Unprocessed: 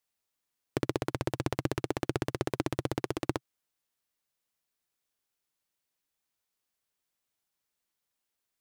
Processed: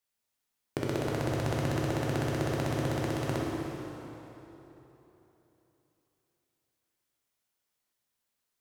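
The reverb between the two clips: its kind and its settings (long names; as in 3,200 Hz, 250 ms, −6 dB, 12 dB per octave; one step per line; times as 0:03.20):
dense smooth reverb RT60 3.5 s, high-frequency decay 0.75×, DRR −3.5 dB
level −3 dB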